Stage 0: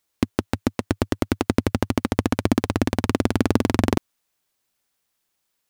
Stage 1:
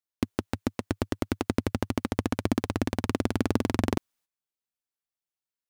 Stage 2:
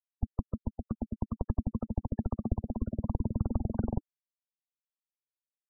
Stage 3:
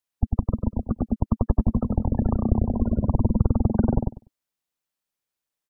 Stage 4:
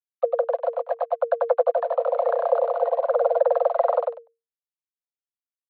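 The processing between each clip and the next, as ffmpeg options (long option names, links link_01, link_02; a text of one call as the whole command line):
ffmpeg -i in.wav -af "agate=range=-14dB:threshold=-54dB:ratio=16:detection=peak,volume=-6.5dB" out.wav
ffmpeg -i in.wav -af "afreqshift=-320,afftfilt=real='re*gte(hypot(re,im),0.0562)':imag='im*gte(hypot(re,im),0.0562)':win_size=1024:overlap=0.75,volume=-3dB" out.wav
ffmpeg -i in.wav -filter_complex "[0:a]asplit=2[link_01][link_02];[link_02]adelay=98,lowpass=frequency=1400:poles=1,volume=-3dB,asplit=2[link_03][link_04];[link_04]adelay=98,lowpass=frequency=1400:poles=1,volume=0.17,asplit=2[link_05][link_06];[link_06]adelay=98,lowpass=frequency=1400:poles=1,volume=0.17[link_07];[link_01][link_03][link_05][link_07]amix=inputs=4:normalize=0,volume=9dB" out.wav
ffmpeg -i in.wav -af "aresample=8000,aeval=exprs='sgn(val(0))*max(abs(val(0))-0.00501,0)':channel_layout=same,aresample=44100,afreqshift=460" out.wav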